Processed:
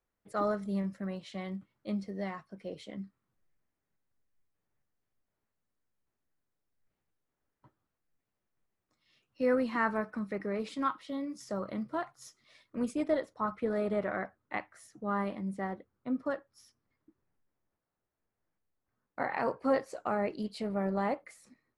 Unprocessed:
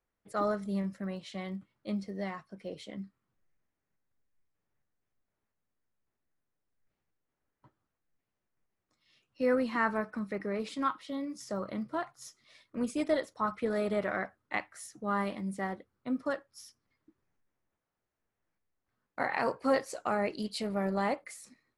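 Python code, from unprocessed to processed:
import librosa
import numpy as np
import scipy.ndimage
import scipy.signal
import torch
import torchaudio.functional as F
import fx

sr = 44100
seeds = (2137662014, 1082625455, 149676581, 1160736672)

y = fx.high_shelf(x, sr, hz=2600.0, db=fx.steps((0.0, -3.5), (12.92, -11.0)))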